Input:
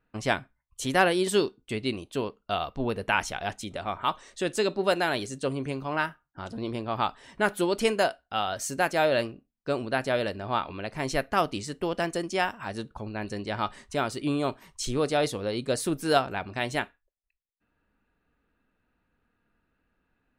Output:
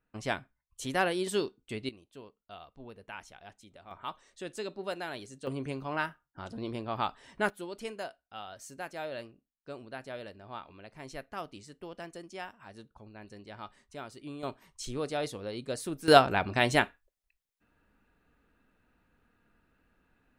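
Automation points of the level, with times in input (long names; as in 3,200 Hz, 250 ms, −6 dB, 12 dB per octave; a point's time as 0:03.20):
−6.5 dB
from 0:01.89 −19 dB
from 0:03.91 −12 dB
from 0:05.47 −4.5 dB
from 0:07.50 −15 dB
from 0:14.43 −8 dB
from 0:16.08 +4 dB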